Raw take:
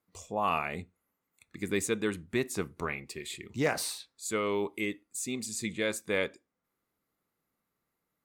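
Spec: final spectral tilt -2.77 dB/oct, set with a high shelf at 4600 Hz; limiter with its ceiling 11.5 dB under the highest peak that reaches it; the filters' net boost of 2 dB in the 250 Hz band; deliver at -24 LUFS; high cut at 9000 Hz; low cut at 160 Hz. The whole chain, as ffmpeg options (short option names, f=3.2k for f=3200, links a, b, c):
-af "highpass=160,lowpass=9k,equalizer=f=250:t=o:g=3.5,highshelf=f=4.6k:g=4,volume=13dB,alimiter=limit=-12dB:level=0:latency=1"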